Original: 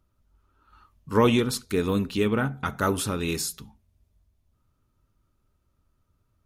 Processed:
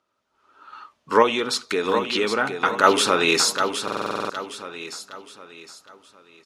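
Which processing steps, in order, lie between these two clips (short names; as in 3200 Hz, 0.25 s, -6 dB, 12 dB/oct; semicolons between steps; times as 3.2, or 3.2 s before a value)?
AGC gain up to 12.5 dB; in parallel at +2 dB: limiter -12.5 dBFS, peak gain reduction 11 dB; 1.22–2.84 on the sum: compressor 2.5:1, threshold -15 dBFS, peak gain reduction 7 dB; BPF 490–5700 Hz; on a send: feedback echo 0.764 s, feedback 38%, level -7.5 dB; on the sum: stuck buffer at 3.83, samples 2048, times 9; gain -1 dB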